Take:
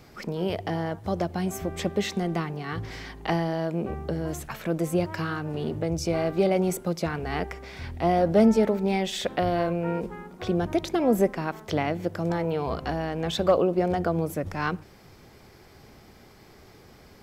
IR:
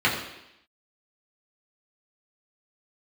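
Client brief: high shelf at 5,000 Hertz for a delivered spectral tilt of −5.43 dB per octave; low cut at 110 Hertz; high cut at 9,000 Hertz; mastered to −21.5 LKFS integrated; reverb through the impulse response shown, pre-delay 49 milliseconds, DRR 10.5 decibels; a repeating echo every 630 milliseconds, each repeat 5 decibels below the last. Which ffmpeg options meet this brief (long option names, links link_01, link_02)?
-filter_complex "[0:a]highpass=110,lowpass=9000,highshelf=frequency=5000:gain=8.5,aecho=1:1:630|1260|1890|2520|3150|3780|4410:0.562|0.315|0.176|0.0988|0.0553|0.031|0.0173,asplit=2[link_01][link_02];[1:a]atrim=start_sample=2205,adelay=49[link_03];[link_02][link_03]afir=irnorm=-1:irlink=0,volume=-27.5dB[link_04];[link_01][link_04]amix=inputs=2:normalize=0,volume=4dB"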